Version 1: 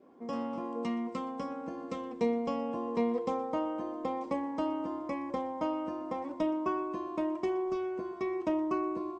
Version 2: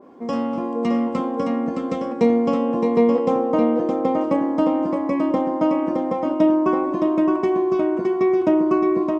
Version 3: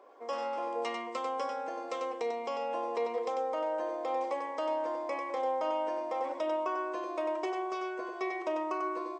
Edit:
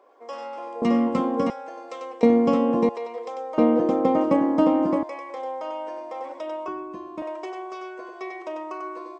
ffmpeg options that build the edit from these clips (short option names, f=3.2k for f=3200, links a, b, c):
-filter_complex "[1:a]asplit=3[a][b][c];[2:a]asplit=5[d][e][f][g][h];[d]atrim=end=0.822[i];[a]atrim=start=0.818:end=1.502[j];[e]atrim=start=1.498:end=2.232[k];[b]atrim=start=2.228:end=2.892[l];[f]atrim=start=2.888:end=3.582[m];[c]atrim=start=3.578:end=5.032[n];[g]atrim=start=5.028:end=6.682[o];[0:a]atrim=start=6.678:end=7.222[p];[h]atrim=start=7.218[q];[i][j]acrossfade=d=0.004:c1=hsin:c2=hsin[r];[r][k]acrossfade=d=0.004:c1=hsin:c2=hsin[s];[s][l]acrossfade=d=0.004:c1=hsin:c2=hsin[t];[t][m]acrossfade=d=0.004:c1=hsin:c2=hsin[u];[u][n]acrossfade=d=0.004:c1=hsin:c2=hsin[v];[v][o]acrossfade=d=0.004:c1=hsin:c2=hsin[w];[w][p]acrossfade=d=0.004:c1=hsin:c2=hsin[x];[x][q]acrossfade=d=0.004:c1=hsin:c2=hsin"